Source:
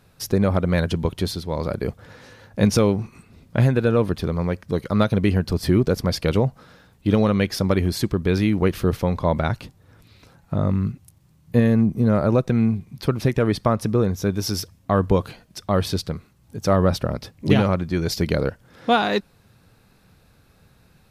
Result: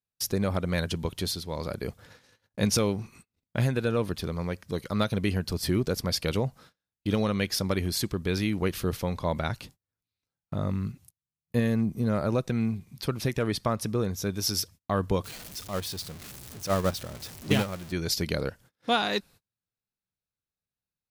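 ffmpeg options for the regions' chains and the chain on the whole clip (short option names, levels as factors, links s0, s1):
-filter_complex "[0:a]asettb=1/sr,asplit=3[s0][s1][s2];[s0]atrim=end=15.244[s3];[s1]atrim=start=15.24:end=17.92,asetpts=PTS-STARTPTS,afade=t=in:d=0.004:c=qsin,afade=t=out:st=2.676:d=0.004:c=qsin,aeval=exprs='val(0)+0.5*0.0668*sgn(val(0))':c=same,agate=range=0.316:threshold=0.158:ratio=16:release=100:detection=peak[s4];[s2]atrim=start=17.916[s5];[s3][s4]acrossfade=d=0.004:c1=hsin:c2=qsin[s6];[s6][s5]acrossfade=d=0.004:c1=qsin:c2=hsin,agate=range=0.02:threshold=0.00708:ratio=16:detection=peak,highshelf=f=2500:g=10.5,volume=0.376"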